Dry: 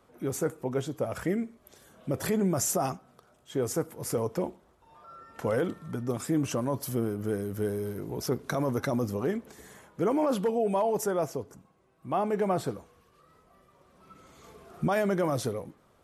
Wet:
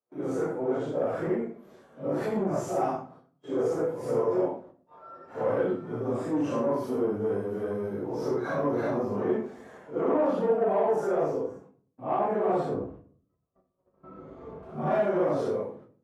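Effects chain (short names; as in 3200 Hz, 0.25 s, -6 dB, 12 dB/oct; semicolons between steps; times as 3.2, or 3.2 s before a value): phase scrambler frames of 0.2 s; gate -56 dBFS, range -35 dB; 12.74–14.63 tilt -4 dB/oct; in parallel at 0 dB: limiter -22.5 dBFS, peak gain reduction 8 dB; on the sum: soft clip -19.5 dBFS, distortion -15 dB; band-pass 610 Hz, Q 0.77; reverb RT60 0.50 s, pre-delay 7 ms, DRR 5 dB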